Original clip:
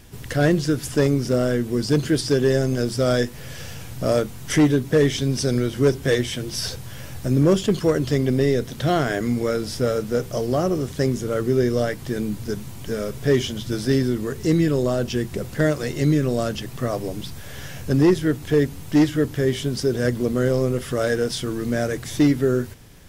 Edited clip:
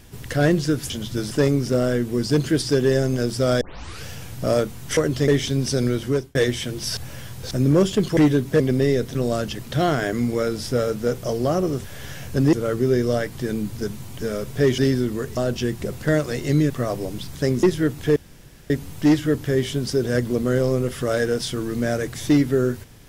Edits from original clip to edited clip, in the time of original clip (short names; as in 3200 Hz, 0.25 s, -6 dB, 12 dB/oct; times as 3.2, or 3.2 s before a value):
3.2 tape start 0.44 s
4.56–4.99 swap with 7.88–8.19
5.73–6.06 fade out
6.68–7.22 reverse
10.92–11.2 swap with 17.38–18.07
13.45–13.86 move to 0.9
14.45–14.89 cut
16.22–16.73 move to 8.74
18.6 insert room tone 0.54 s